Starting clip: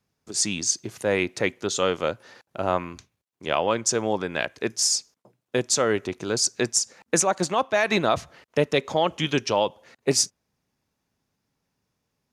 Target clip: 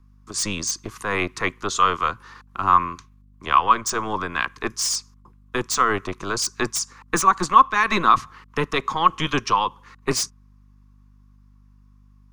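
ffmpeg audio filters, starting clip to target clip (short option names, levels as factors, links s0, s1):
-filter_complex "[0:a]aeval=exprs='val(0)+0.00282*(sin(2*PI*50*n/s)+sin(2*PI*2*50*n/s)/2+sin(2*PI*3*50*n/s)/3+sin(2*PI*4*50*n/s)/4+sin(2*PI*5*50*n/s)/5)':c=same,acrossover=split=400|430|3900[s0][s1][s2][s3];[s0]aeval=exprs='0.211*(cos(1*acos(clip(val(0)/0.211,-1,1)))-cos(1*PI/2))+0.0376*(cos(8*acos(clip(val(0)/0.211,-1,1)))-cos(8*PI/2))':c=same[s4];[s2]highpass=f=1100:t=q:w=8.2[s5];[s3]aeval=exprs='0.112*(abs(mod(val(0)/0.112+3,4)-2)-1)':c=same[s6];[s4][s1][s5][s6]amix=inputs=4:normalize=0"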